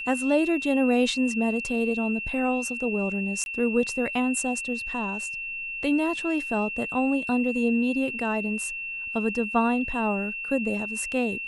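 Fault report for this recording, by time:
tone 2700 Hz -31 dBFS
3.44–3.46 gap 21 ms

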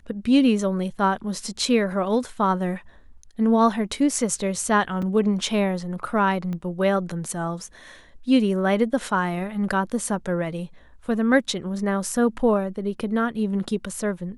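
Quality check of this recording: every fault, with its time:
5.02 gap 4.8 ms
6.53 pop -21 dBFS

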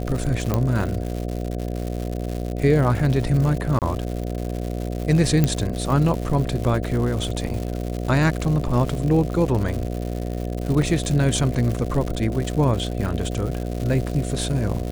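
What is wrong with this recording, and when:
buzz 60 Hz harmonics 12 -27 dBFS
crackle 190/s -27 dBFS
0.54 pop -8 dBFS
3.79–3.82 gap 28 ms
5.44 pop -6 dBFS
10.82 gap 2.3 ms

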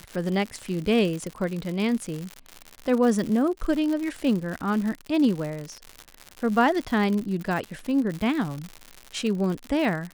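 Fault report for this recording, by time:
crackle 130/s -29 dBFS

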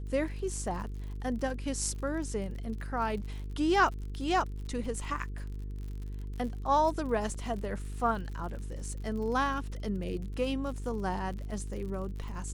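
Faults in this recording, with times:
buzz 50 Hz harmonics 9 -38 dBFS
crackle 59/s -40 dBFS
7.34–7.35 gap 5.1 ms

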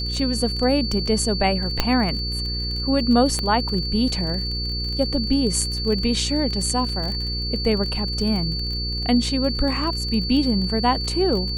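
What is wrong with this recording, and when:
crackle 37/s -28 dBFS
hum 60 Hz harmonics 8 -28 dBFS
tone 4500 Hz -27 dBFS
1.8 pop -3 dBFS
3.39 pop -11 dBFS
6.89 gap 2.9 ms

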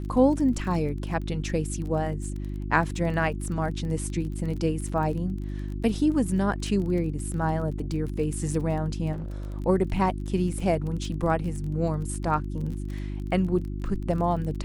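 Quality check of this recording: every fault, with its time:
crackle 25/s -34 dBFS
hum 50 Hz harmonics 7 -32 dBFS
9.12–9.56 clipped -30 dBFS

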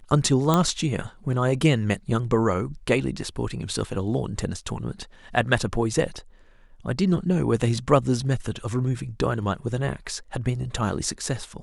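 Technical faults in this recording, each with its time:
0.54 pop -7 dBFS

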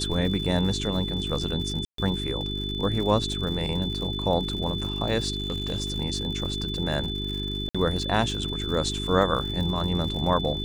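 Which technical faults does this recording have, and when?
crackle 120/s -34 dBFS
hum 50 Hz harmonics 8 -32 dBFS
tone 3500 Hz -32 dBFS
1.85–1.98 gap 0.133 s
5.38–5.98 clipped -23 dBFS
7.69–7.75 gap 56 ms

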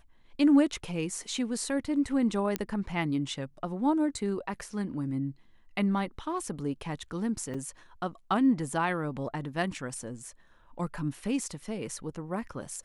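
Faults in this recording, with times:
2.56 pop -13 dBFS
7.54 gap 3.8 ms

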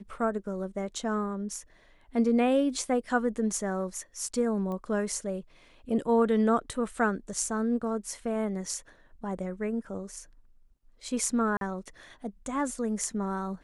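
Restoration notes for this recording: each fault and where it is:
4.72 pop -26 dBFS
11.57–11.61 gap 42 ms

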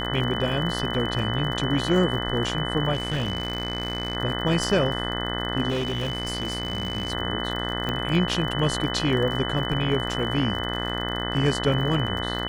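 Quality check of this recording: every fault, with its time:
buzz 60 Hz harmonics 34 -30 dBFS
crackle 51/s -31 dBFS
tone 3000 Hz -31 dBFS
2.93–4.17 clipped -21.5 dBFS
5.69–7.12 clipped -22.5 dBFS
7.89 pop -14 dBFS

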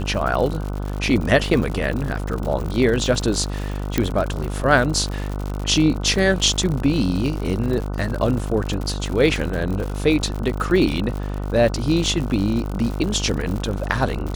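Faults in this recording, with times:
buzz 50 Hz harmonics 30 -26 dBFS
crackle 100/s -26 dBFS
1.54 gap 2.1 ms
3.98 pop -4 dBFS

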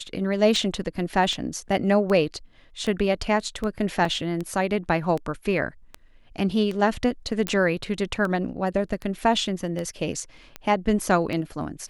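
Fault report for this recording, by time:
tick 78 rpm
4.05 gap 2.4 ms
7.47 pop -9 dBFS

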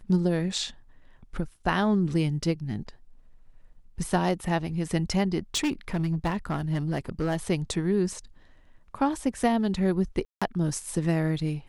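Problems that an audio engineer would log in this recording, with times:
5.55–7.37 clipped -22 dBFS
10.25–10.42 gap 0.166 s

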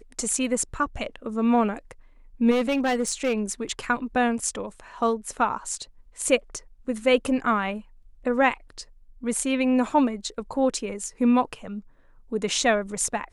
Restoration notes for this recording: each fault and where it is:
2.5–3.52 clipped -19 dBFS

